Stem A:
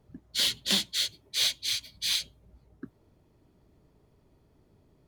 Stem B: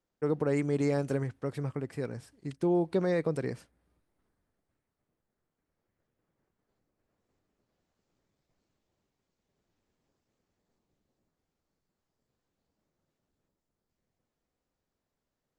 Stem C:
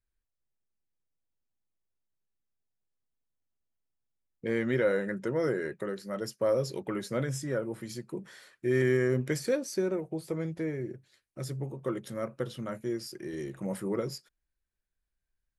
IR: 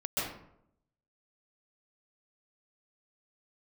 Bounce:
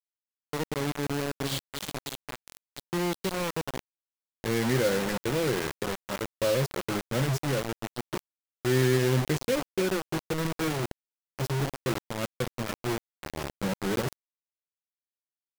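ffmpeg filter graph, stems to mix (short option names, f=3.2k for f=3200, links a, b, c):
-filter_complex "[0:a]equalizer=f=110:t=o:w=0.5:g=4.5,adelay=1100,volume=-12.5dB[a];[1:a]adelay=300,volume=-7dB,asplit=2[b][c];[c]volume=-19.5dB[d];[2:a]agate=range=-33dB:threshold=-45dB:ratio=3:detection=peak,volume=-1dB,asplit=2[e][f];[f]volume=-16.5dB[g];[d][g]amix=inputs=2:normalize=0,aecho=0:1:285:1[h];[a][b][e][h]amix=inputs=4:normalize=0,lowpass=4.4k,lowshelf=f=160:g=11.5,acrusher=bits=4:mix=0:aa=0.000001"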